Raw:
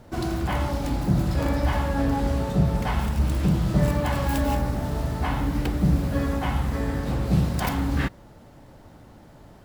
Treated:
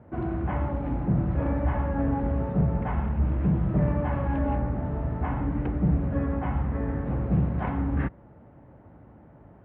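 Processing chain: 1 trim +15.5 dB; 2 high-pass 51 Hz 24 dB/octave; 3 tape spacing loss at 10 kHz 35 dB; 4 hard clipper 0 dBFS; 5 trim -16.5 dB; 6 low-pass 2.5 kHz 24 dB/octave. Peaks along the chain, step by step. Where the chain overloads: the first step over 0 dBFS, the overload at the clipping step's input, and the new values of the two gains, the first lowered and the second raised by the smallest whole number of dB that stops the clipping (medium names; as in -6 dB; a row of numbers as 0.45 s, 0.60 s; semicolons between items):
+7.5 dBFS, +7.5 dBFS, +6.5 dBFS, 0.0 dBFS, -16.5 dBFS, -16.0 dBFS; step 1, 6.5 dB; step 1 +8.5 dB, step 5 -9.5 dB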